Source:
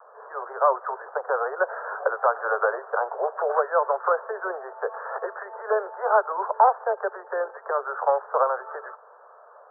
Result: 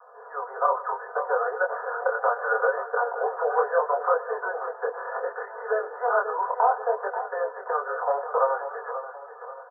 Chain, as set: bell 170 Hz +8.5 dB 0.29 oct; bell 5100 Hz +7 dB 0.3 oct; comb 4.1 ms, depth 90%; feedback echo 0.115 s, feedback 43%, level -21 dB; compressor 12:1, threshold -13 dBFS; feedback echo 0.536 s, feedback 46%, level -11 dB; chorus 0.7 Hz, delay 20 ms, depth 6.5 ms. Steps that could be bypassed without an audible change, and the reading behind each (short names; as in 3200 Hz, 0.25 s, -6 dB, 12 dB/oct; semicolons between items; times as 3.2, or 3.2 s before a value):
bell 170 Hz: input band starts at 340 Hz; bell 5100 Hz: input band ends at 1800 Hz